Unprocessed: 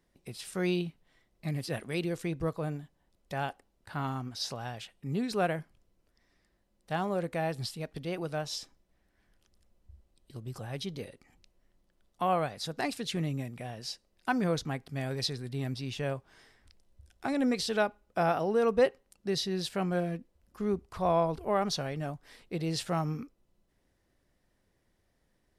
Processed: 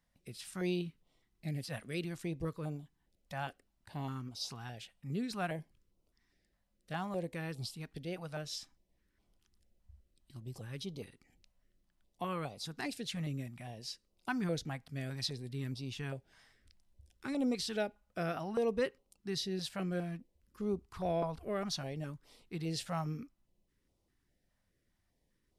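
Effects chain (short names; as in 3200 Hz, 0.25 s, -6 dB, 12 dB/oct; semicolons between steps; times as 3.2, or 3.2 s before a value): stepped notch 4.9 Hz 370–1700 Hz; gain -4.5 dB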